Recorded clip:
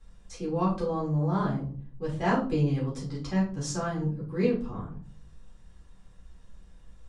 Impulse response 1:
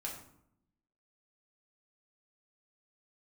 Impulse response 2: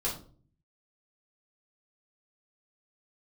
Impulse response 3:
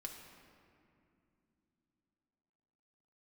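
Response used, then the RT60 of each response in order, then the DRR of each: 2; 0.70 s, 0.45 s, no single decay rate; -3.0 dB, -6.0 dB, 1.0 dB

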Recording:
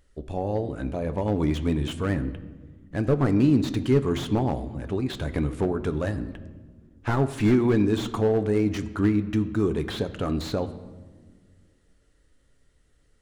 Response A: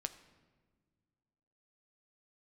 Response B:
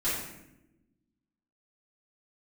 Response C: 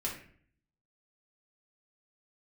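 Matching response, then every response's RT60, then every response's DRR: A; no single decay rate, no single decay rate, 0.50 s; 9.0 dB, -13.5 dB, -4.0 dB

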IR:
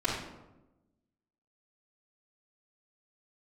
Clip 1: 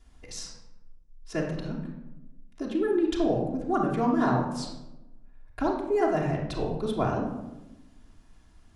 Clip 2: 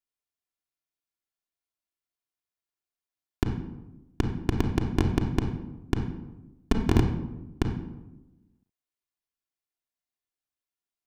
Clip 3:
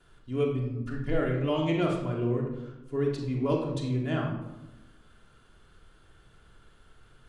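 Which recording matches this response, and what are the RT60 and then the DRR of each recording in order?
3; 1.0 s, 1.0 s, 1.0 s; -5.5 dB, 0.5 dB, -11.0 dB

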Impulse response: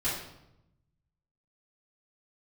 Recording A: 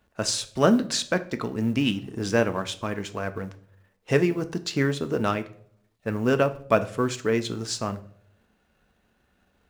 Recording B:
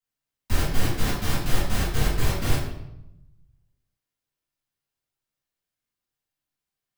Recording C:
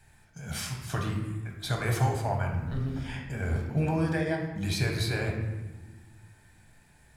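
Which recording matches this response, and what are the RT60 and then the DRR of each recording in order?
B; 0.60 s, 0.85 s, 1.3 s; 9.0 dB, -12.0 dB, 0.5 dB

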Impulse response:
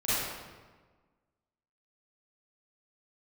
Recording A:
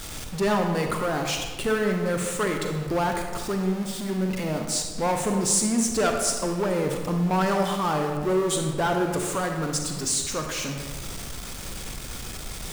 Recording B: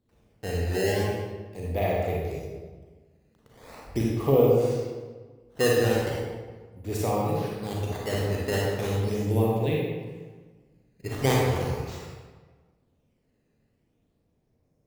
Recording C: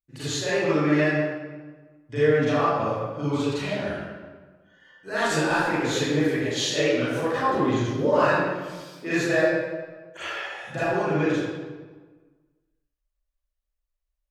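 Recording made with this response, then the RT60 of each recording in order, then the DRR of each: C; 1.4 s, 1.4 s, 1.4 s; 3.0 dB, -3.5 dB, -13.5 dB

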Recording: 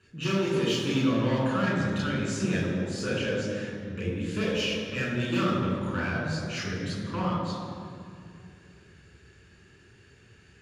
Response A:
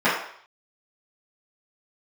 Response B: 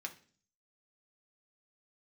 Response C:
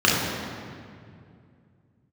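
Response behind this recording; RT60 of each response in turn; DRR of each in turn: C; 0.60 s, 0.45 s, 2.3 s; -14.0 dB, 2.0 dB, -5.5 dB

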